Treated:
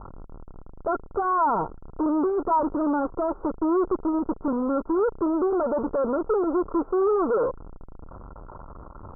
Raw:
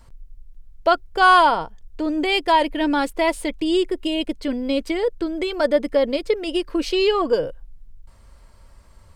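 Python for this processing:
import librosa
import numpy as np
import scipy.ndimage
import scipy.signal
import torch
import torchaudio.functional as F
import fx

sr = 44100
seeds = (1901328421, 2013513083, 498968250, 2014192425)

y = x + 0.5 * 10.0 ** (-25.0 / 20.0) * np.sign(x)
y = fx.dynamic_eq(y, sr, hz=420.0, q=2.3, threshold_db=-32.0, ratio=4.0, max_db=6)
y = fx.tube_stage(y, sr, drive_db=24.0, bias=0.6)
y = scipy.signal.sosfilt(scipy.signal.cheby1(6, 3, 1400.0, 'lowpass', fs=sr, output='sos'), y)
y = fx.low_shelf(y, sr, hz=320.0, db=-5.0)
y = fx.upward_expand(y, sr, threshold_db=-46.0, expansion=1.5)
y = F.gain(torch.from_numpy(y), 7.0).numpy()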